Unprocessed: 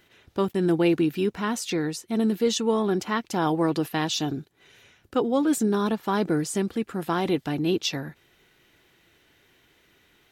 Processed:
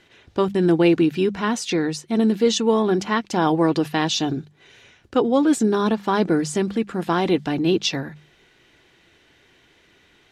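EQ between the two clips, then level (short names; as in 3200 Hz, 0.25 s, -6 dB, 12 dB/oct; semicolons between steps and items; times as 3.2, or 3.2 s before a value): LPF 7400 Hz 12 dB/oct; notches 50/100/150/200 Hz; notch 1300 Hz, Q 24; +5.0 dB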